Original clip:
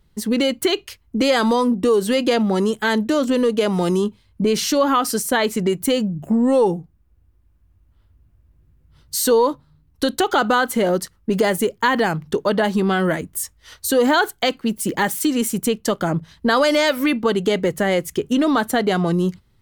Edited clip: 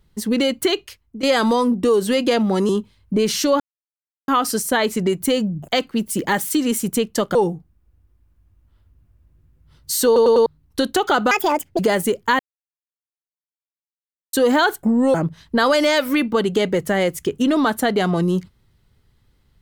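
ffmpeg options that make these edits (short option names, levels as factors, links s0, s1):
-filter_complex "[0:a]asplit=16[s0][s1][s2][s3][s4][s5][s6][s7][s8][s9][s10][s11][s12][s13][s14][s15];[s0]atrim=end=1.23,asetpts=PTS-STARTPTS,afade=t=out:st=0.73:d=0.5:silence=0.177828[s16];[s1]atrim=start=1.23:end=2.692,asetpts=PTS-STARTPTS,afade=t=in:d=0.004:c=hsin:silence=0.177828[s17];[s2]atrim=start=3.968:end=4.88,asetpts=PTS-STARTPTS,afade=t=out:st=0.908:d=0.004:c=hsin,apad=pad_dur=0.68[s18];[s3]atrim=start=4.88:end=6.282,asetpts=PTS-STARTPTS,afade=t=in:d=0.004:c=hsin[s19];[s4]atrim=start=14.378:end=16.052[s20];[s5]atrim=start=6.588:end=9.402[s21];[s6]atrim=start=9.298:end=9.402[s22];[s7]atrim=start=9.298:end=9.402[s23];[s8]atrim=start=9.298:end=9.402[s24];[s9]atrim=start=9.698:end=10.554[s25];[s10]atrim=start=10.55:end=11.34,asetpts=PTS-STARTPTS,asetrate=72324,aresample=44100,atrim=end_sample=21243,asetpts=PTS-STARTPTS[s26];[s11]atrim=start=11.336:end=11.94,asetpts=PTS-STARTPTS,afade=t=out:st=0.6:d=0.004:c=hsin[s27];[s12]atrim=start=11.94:end=13.88,asetpts=PTS-STARTPTS,volume=0[s28];[s13]atrim=start=13.88:end=14.382,asetpts=PTS-STARTPTS,afade=t=in:d=0.004:c=hsin[s29];[s14]atrim=start=6.278:end=6.592[s30];[s15]atrim=start=16.048[s31];[s16][s17]concat=n=2:v=0:a=1[s32];[s18][s19]concat=n=2:v=0:a=1[s33];[s32][s33]acrossfade=d=0.004:c1=hsin:c2=hsin[s34];[s34][s20]acrossfade=d=0.004:c1=hsin:c2=hsin[s35];[s35][s21]acrossfade=d=0.004:c1=hsin:c2=hsin[s36];[s36][s22]acrossfade=d=0.004:c1=hsin:c2=hsin[s37];[s37][s23]acrossfade=d=0.004:c1=hsin:c2=hsin[s38];[s38][s24]acrossfade=d=0.004:c1=hsin:c2=hsin[s39];[s39][s25]acrossfade=d=0.004:c1=hsin:c2=hsin[s40];[s40][s26]acrossfade=d=0.004:c1=hsin:c2=hsin[s41];[s27][s28][s29]concat=n=3:v=0:a=1[s42];[s41][s42]acrossfade=d=0.004:c1=hsin:c2=hsin[s43];[s43][s30]acrossfade=d=0.004:c1=hsin:c2=hsin[s44];[s44][s31]acrossfade=d=0.004:c1=hsin:c2=hsin"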